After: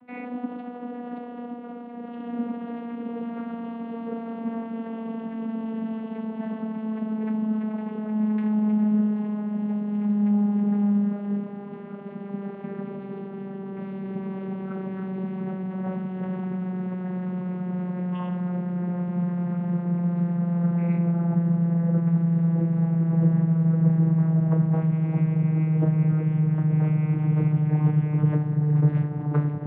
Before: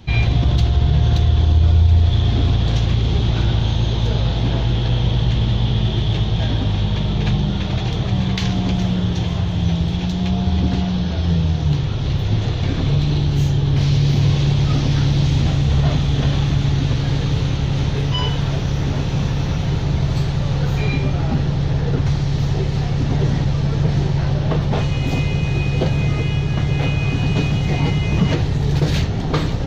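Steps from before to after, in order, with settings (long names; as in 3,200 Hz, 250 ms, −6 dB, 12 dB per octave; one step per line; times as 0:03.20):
vocoder with a gliding carrier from B3, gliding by −9 semitones
low-pass filter 1,900 Hz 24 dB per octave
low-shelf EQ 340 Hz −6 dB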